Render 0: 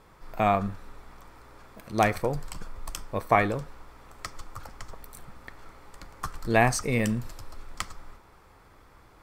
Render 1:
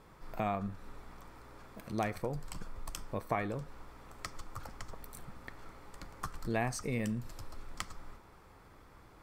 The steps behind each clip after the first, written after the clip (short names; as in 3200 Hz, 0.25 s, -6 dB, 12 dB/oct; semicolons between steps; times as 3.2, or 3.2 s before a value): bell 190 Hz +3.5 dB 2.2 oct; compressor 2:1, threshold -34 dBFS, peak gain reduction 11 dB; gain -3.5 dB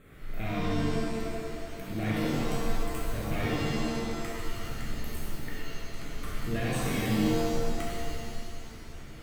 soft clip -33.5 dBFS, distortion -10 dB; fixed phaser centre 2200 Hz, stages 4; shimmer reverb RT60 1.8 s, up +7 st, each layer -2 dB, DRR -5.5 dB; gain +4 dB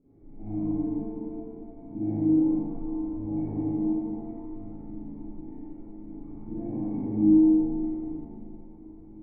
vocal tract filter u; reverb, pre-delay 38 ms, DRR -6 dB